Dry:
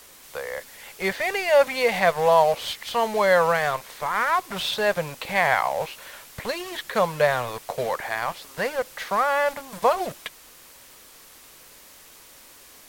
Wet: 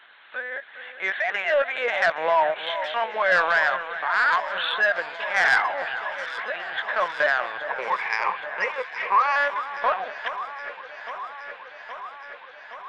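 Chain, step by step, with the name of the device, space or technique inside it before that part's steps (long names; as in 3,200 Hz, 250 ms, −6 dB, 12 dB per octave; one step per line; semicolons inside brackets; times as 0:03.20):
talking toy (linear-prediction vocoder at 8 kHz pitch kept; high-pass filter 650 Hz 12 dB per octave; parametric band 1,600 Hz +11.5 dB 0.38 octaves; soft clipping −11.5 dBFS, distortion −16 dB)
0:07.70–0:09.36: EQ curve with evenly spaced ripples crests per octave 0.82, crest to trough 18 dB
delay that swaps between a low-pass and a high-pass 410 ms, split 1,900 Hz, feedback 85%, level −11 dB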